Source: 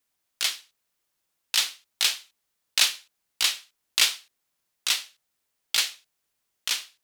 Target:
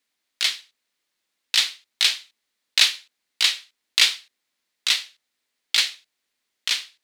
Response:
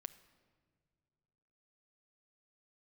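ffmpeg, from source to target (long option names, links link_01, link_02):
-af "equalizer=frequency=125:width_type=o:width=1:gain=-4,equalizer=frequency=250:width_type=o:width=1:gain=10,equalizer=frequency=500:width_type=o:width=1:gain=5,equalizer=frequency=1000:width_type=o:width=1:gain=3,equalizer=frequency=2000:width_type=o:width=1:gain=10,equalizer=frequency=4000:width_type=o:width=1:gain=10,equalizer=frequency=8000:width_type=o:width=1:gain=4,volume=-7dB"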